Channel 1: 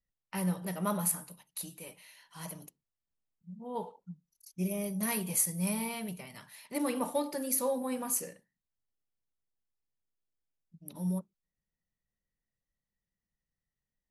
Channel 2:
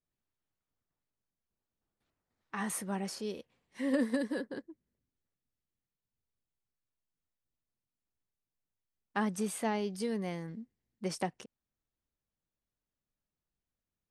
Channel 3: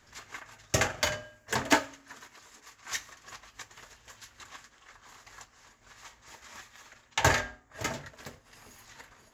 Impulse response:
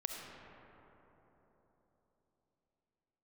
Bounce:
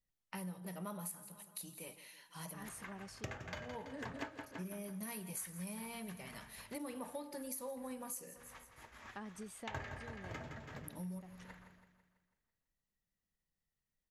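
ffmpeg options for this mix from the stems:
-filter_complex "[0:a]volume=-1.5dB,asplit=3[a][b][c];[b]volume=-18.5dB[d];[1:a]volume=-12dB[e];[2:a]agate=range=-33dB:threshold=-52dB:ratio=3:detection=peak,bass=f=250:g=5,treble=f=4k:g=-14,adelay=2500,volume=-5dB,asplit=2[f][g];[g]volume=-10dB[h];[c]apad=whole_len=626459[i];[e][i]sidechaincompress=threshold=-43dB:ratio=8:attack=16:release=232[j];[d][h]amix=inputs=2:normalize=0,aecho=0:1:165|330|495|660|825|990|1155:1|0.5|0.25|0.125|0.0625|0.0312|0.0156[k];[a][j][f][k]amix=inputs=4:normalize=0,acompressor=threshold=-44dB:ratio=4"

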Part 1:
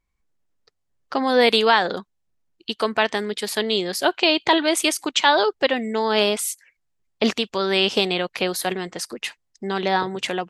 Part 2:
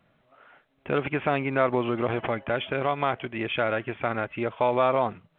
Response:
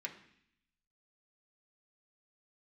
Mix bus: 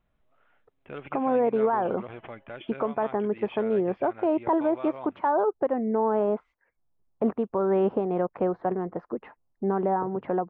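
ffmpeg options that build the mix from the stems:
-filter_complex "[0:a]lowpass=f=1.1k:w=0.5412,lowpass=f=1.1k:w=1.3066,alimiter=limit=-13.5dB:level=0:latency=1:release=252,volume=2.5dB[a];[1:a]volume=-13.5dB[b];[a][b]amix=inputs=2:normalize=0,alimiter=limit=-15dB:level=0:latency=1:release=459"

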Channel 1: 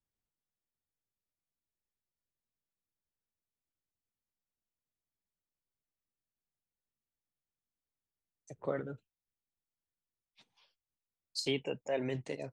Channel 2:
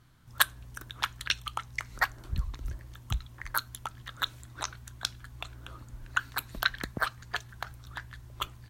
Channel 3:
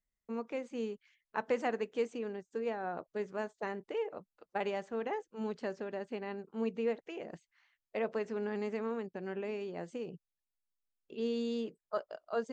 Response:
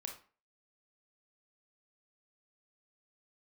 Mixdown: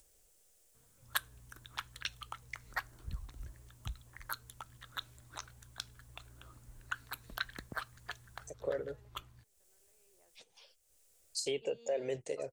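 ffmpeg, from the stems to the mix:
-filter_complex "[0:a]equalizer=f=125:t=o:w=1:g=-9,equalizer=f=250:t=o:w=1:g=-12,equalizer=f=500:t=o:w=1:g=8,equalizer=f=1k:t=o:w=1:g=-10,equalizer=f=2k:t=o:w=1:g=-4,equalizer=f=4k:t=o:w=1:g=-5,equalizer=f=8k:t=o:w=1:g=8,volume=2.5dB,asplit=2[a][b];[1:a]adelay=750,volume=-10.5dB[c];[2:a]highpass=460,acompressor=threshold=-42dB:ratio=6,adelay=450,volume=-11dB,afade=t=in:st=9.97:d=0.28:silence=0.298538[d];[b]apad=whole_len=572269[e];[d][e]sidechaingate=range=-33dB:threshold=-60dB:ratio=16:detection=peak[f];[a][f]amix=inputs=2:normalize=0,acompressor=mode=upward:threshold=-49dB:ratio=2.5,alimiter=level_in=1.5dB:limit=-24dB:level=0:latency=1:release=151,volume=-1.5dB,volume=0dB[g];[c][g]amix=inputs=2:normalize=0"

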